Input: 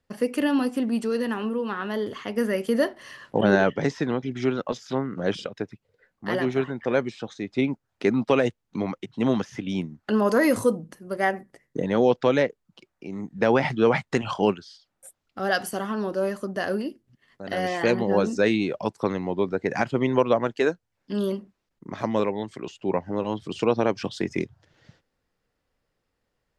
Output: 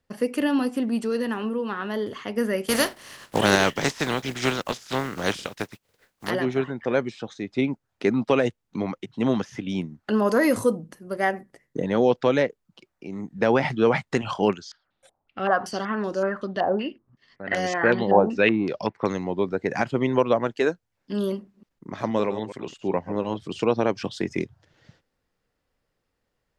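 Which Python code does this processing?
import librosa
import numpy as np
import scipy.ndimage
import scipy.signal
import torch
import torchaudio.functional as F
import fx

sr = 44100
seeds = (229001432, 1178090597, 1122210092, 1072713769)

y = fx.spec_flatten(x, sr, power=0.49, at=(2.68, 6.29), fade=0.02)
y = fx.filter_held_lowpass(y, sr, hz=5.3, low_hz=820.0, high_hz=6800.0, at=(14.48, 19.23), fade=0.02)
y = fx.reverse_delay(y, sr, ms=127, wet_db=-12, at=(21.38, 23.37))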